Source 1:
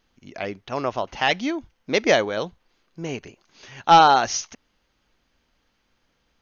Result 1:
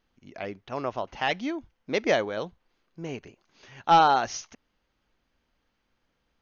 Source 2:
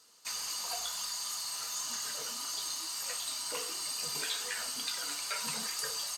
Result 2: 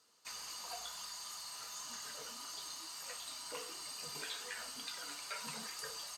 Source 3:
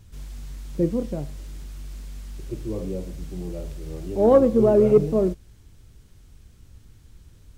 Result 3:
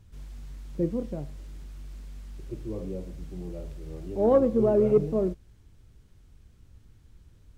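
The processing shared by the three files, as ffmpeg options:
-af "highshelf=frequency=3700:gain=-6.5,volume=-5dB"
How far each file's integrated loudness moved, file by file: −4.5, −9.0, −5.0 LU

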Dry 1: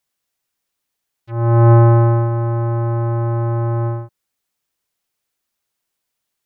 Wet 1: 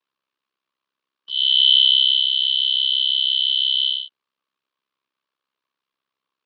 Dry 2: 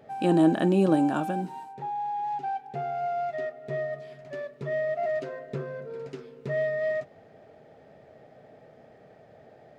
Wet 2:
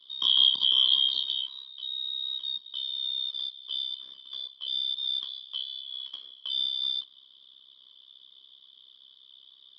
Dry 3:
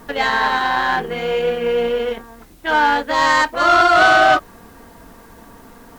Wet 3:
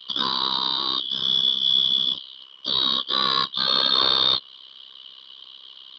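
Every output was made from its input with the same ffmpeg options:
-filter_complex "[0:a]afftfilt=real='real(if(lt(b,272),68*(eq(floor(b/68),0)*2+eq(floor(b/68),1)*3+eq(floor(b/68),2)*0+eq(floor(b/68),3)*1)+mod(b,68),b),0)':imag='imag(if(lt(b,272),68*(eq(floor(b/68),0)*2+eq(floor(b/68),1)*3+eq(floor(b/68),2)*0+eq(floor(b/68),3)*1)+mod(b,68),b),0)':win_size=2048:overlap=0.75,acrossover=split=310|850|2900[link_01][link_02][link_03][link_04];[link_04]alimiter=limit=-14dB:level=0:latency=1:release=188[link_05];[link_01][link_02][link_03][link_05]amix=inputs=4:normalize=0,tremolo=f=66:d=0.947,highpass=200,equalizer=frequency=750:width_type=q:width=4:gain=-9,equalizer=frequency=1100:width_type=q:width=4:gain=9,equalizer=frequency=2000:width_type=q:width=4:gain=-4,lowpass=frequency=3900:width=0.5412,lowpass=frequency=3900:width=1.3066,volume=3.5dB"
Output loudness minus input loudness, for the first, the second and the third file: +0.5, +1.5, −4.0 LU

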